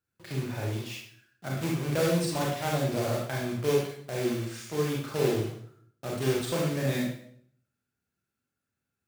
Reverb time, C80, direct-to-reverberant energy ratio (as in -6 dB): 0.60 s, 5.5 dB, -3.0 dB